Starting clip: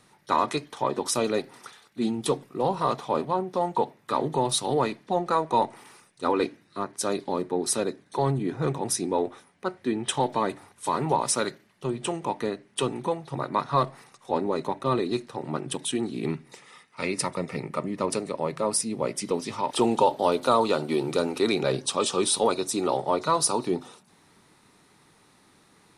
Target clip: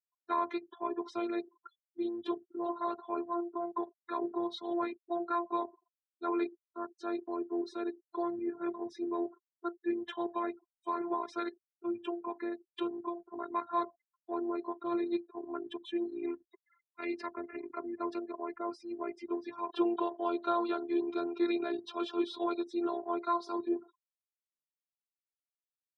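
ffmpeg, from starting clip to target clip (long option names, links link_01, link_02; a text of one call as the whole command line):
ffmpeg -i in.wav -af "afftfilt=real='re*gte(hypot(re,im),0.0158)':imag='im*gte(hypot(re,im),0.0158)':win_size=1024:overlap=0.75,afftfilt=real='hypot(re,im)*cos(PI*b)':imag='0':win_size=512:overlap=0.75,highpass=110,equalizer=frequency=390:width_type=q:width=4:gain=7,equalizer=frequency=920:width_type=q:width=4:gain=3,equalizer=frequency=1600:width_type=q:width=4:gain=10,equalizer=frequency=2700:width_type=q:width=4:gain=-4,lowpass=frequency=3600:width=0.5412,lowpass=frequency=3600:width=1.3066,volume=-7.5dB" out.wav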